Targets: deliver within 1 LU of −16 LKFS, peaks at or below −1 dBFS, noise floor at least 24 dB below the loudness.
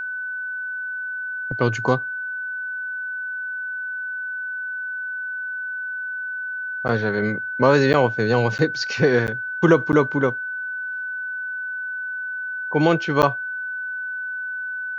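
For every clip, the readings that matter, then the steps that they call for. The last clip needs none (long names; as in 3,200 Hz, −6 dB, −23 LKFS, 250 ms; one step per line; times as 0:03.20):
number of dropouts 6; longest dropout 9.5 ms; interfering tone 1,500 Hz; level of the tone −26 dBFS; integrated loudness −23.0 LKFS; sample peak −2.5 dBFS; target loudness −16.0 LKFS
→ repair the gap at 0:06.88/0:07.93/0:08.58/0:09.27/0:09.92/0:13.22, 9.5 ms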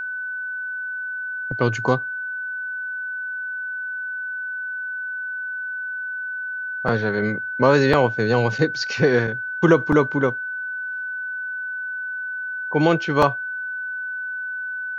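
number of dropouts 0; interfering tone 1,500 Hz; level of the tone −26 dBFS
→ notch filter 1,500 Hz, Q 30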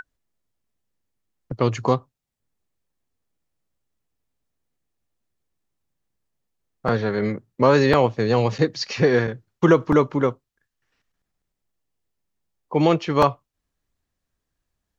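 interfering tone none found; integrated loudness −21.0 LKFS; sample peak −3.5 dBFS; target loudness −16.0 LKFS
→ level +5 dB
brickwall limiter −1 dBFS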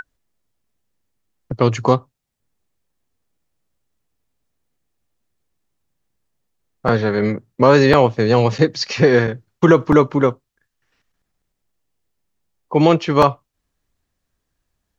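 integrated loudness −16.0 LKFS; sample peak −1.0 dBFS; background noise floor −76 dBFS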